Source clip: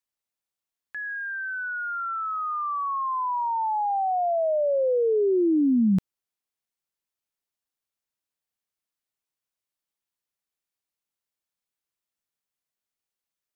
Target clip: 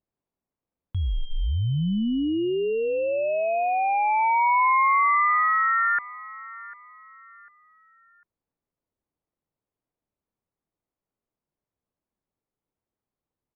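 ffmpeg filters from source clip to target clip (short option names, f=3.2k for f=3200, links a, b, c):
-filter_complex "[0:a]acrossover=split=800[a][b];[b]alimiter=level_in=8.5dB:limit=-24dB:level=0:latency=1,volume=-8.5dB[c];[a][c]amix=inputs=2:normalize=0,equalizer=f=540:w=1:g=4.5,asplit=2[d][e];[e]adelay=748,lowpass=f=970:p=1,volume=-18dB,asplit=2[f][g];[g]adelay=748,lowpass=f=970:p=1,volume=0.36,asplit=2[h][i];[i]adelay=748,lowpass=f=970:p=1,volume=0.36[j];[d][f][h][j]amix=inputs=4:normalize=0,aeval=exprs='val(0)*sin(2*PI*1600*n/s)':c=same,lowpass=f=1.3k:p=1,tiltshelf=f=940:g=9,volume=7.5dB"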